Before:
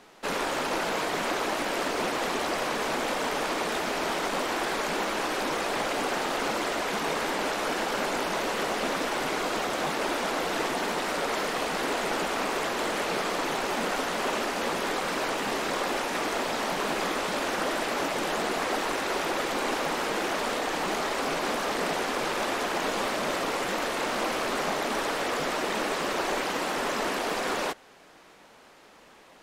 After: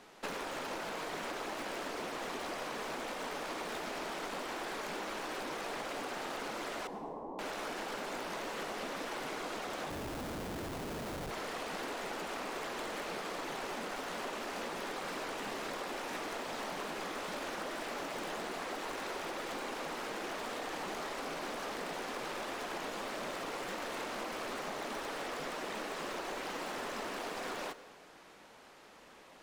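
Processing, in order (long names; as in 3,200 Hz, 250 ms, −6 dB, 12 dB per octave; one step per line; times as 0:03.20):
stylus tracing distortion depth 0.042 ms
downward compressor 12 to 1, threshold −33 dBFS, peak gain reduction 9.5 dB
0:06.87–0:07.39: Chebyshev low-pass with heavy ripple 1,100 Hz, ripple 3 dB
0:09.90–0:11.31: comparator with hysteresis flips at −34.5 dBFS
convolution reverb RT60 1.3 s, pre-delay 78 ms, DRR 14 dB
level −3.5 dB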